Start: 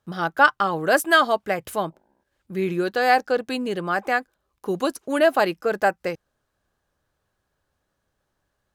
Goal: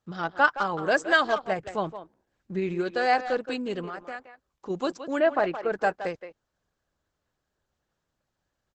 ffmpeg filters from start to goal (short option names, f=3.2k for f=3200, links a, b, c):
-filter_complex "[0:a]asplit=3[a][b][c];[a]afade=t=out:st=1.51:d=0.02[d];[b]lowshelf=f=450:g=4.5,afade=t=in:st=1.51:d=0.02,afade=t=out:st=2.58:d=0.02[e];[c]afade=t=in:st=2.58:d=0.02[f];[d][e][f]amix=inputs=3:normalize=0,asplit=3[g][h][i];[g]afade=t=out:st=3.86:d=0.02[j];[h]acompressor=threshold=-33dB:ratio=3,afade=t=in:st=3.86:d=0.02,afade=t=out:st=4.69:d=0.02[k];[i]afade=t=in:st=4.69:d=0.02[l];[j][k][l]amix=inputs=3:normalize=0,asplit=3[m][n][o];[m]afade=t=out:st=5.19:d=0.02[p];[n]highpass=110,lowpass=2.4k,afade=t=in:st=5.19:d=0.02,afade=t=out:st=5.71:d=0.02[q];[o]afade=t=in:st=5.71:d=0.02[r];[p][q][r]amix=inputs=3:normalize=0,asplit=2[s][t];[t]adelay=170,highpass=300,lowpass=3.4k,asoftclip=type=hard:threshold=-12.5dB,volume=-10dB[u];[s][u]amix=inputs=2:normalize=0,volume=-4.5dB" -ar 48000 -c:a libopus -b:a 12k